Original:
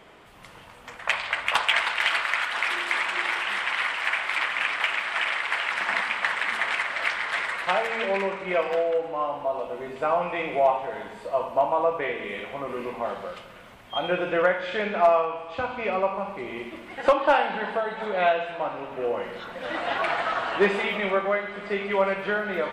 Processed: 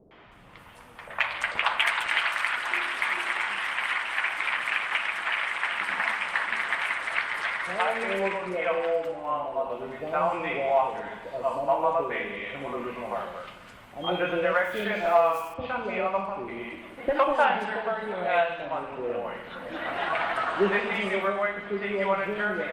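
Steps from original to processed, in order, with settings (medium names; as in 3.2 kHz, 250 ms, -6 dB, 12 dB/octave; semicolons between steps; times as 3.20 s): 14.24–15.22 s: short-mantissa float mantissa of 4-bit; three bands offset in time lows, mids, highs 110/320 ms, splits 540/4500 Hz; Opus 48 kbps 48 kHz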